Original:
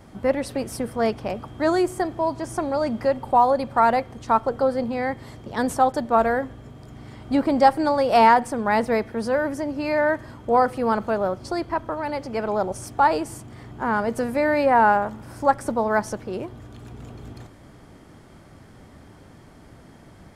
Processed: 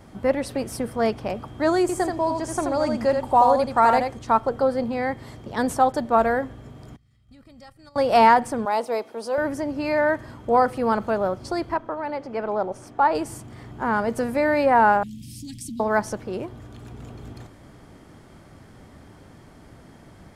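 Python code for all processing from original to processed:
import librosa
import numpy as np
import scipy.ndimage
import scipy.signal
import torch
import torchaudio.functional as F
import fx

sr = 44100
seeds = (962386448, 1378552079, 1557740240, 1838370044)

y = fx.chain(x, sr, fx.peak_eq(hz=7300.0, db=6.0, octaves=0.85),
    fx.echo_single(ms=81, db=-5.0), at=(1.81, 4.19))
y = fx.chain(y, sr, fx.tone_stack(knobs='6-0-2'),
    fx.level_steps(step_db=9),
    fx.comb(ms=1.6, depth=0.48), at=(6.96, 7.96))
y = fx.chain(y, sr, fx.highpass(hz=460.0, slope=12),
    fx.peak_eq(hz=1800.0, db=-12.5, octaves=0.66), at=(8.65, 9.38))
y = fx.chain(y, sr, fx.lowpass(hz=1900.0, slope=6),
    fx.peak_eq(hz=67.0, db=-13.0, octaves=2.2), at=(11.77, 13.15))
y = fx.chain(y, sr, fx.cheby2_bandstop(low_hz=470.0, high_hz=1500.0, order=4, stop_db=50),
    fx.low_shelf(hz=140.0, db=-10.5),
    fx.env_flatten(amount_pct=50), at=(15.03, 15.8))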